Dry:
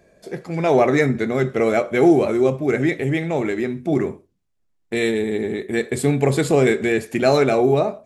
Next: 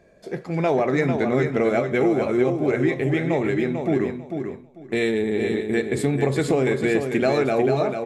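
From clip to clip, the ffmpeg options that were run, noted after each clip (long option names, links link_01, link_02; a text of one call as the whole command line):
ffmpeg -i in.wav -filter_complex "[0:a]highshelf=frequency=6800:gain=-9.5,acompressor=threshold=-17dB:ratio=6,asplit=2[link_01][link_02];[link_02]aecho=0:1:445|890|1335:0.473|0.0946|0.0189[link_03];[link_01][link_03]amix=inputs=2:normalize=0" out.wav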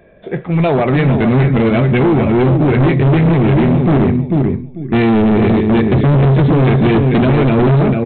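ffmpeg -i in.wav -af "asubboost=boost=10:cutoff=200,aresample=8000,asoftclip=type=hard:threshold=-17.5dB,aresample=44100,volume=9dB" out.wav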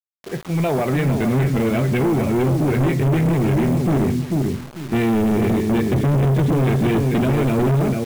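ffmpeg -i in.wav -af "acrusher=bits=4:mix=0:aa=0.000001,volume=-7dB" out.wav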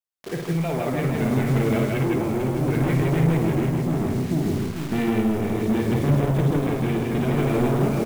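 ffmpeg -i in.wav -filter_complex "[0:a]acompressor=threshold=-21dB:ratio=6,tremolo=f=0.65:d=0.34,asplit=2[link_01][link_02];[link_02]aecho=0:1:55.39|160.3:0.562|0.794[link_03];[link_01][link_03]amix=inputs=2:normalize=0" out.wav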